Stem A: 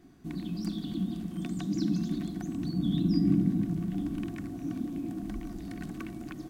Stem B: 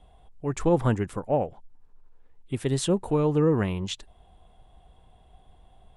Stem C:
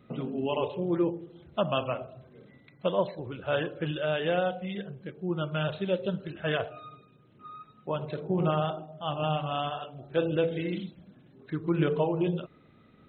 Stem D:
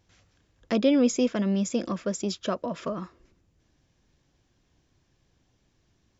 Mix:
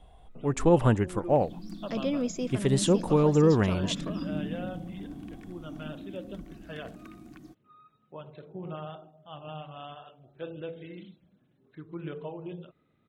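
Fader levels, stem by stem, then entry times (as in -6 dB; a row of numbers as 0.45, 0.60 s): -8.5, +1.0, -12.0, -8.5 dB; 1.05, 0.00, 0.25, 1.20 s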